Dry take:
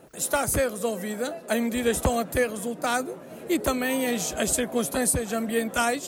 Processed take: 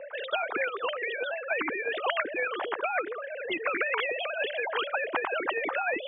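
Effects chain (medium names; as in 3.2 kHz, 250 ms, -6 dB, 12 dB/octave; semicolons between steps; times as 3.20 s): formants replaced by sine waves; three-band isolator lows -16 dB, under 510 Hz, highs -14 dB, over 2 kHz; spectrum-flattening compressor 4:1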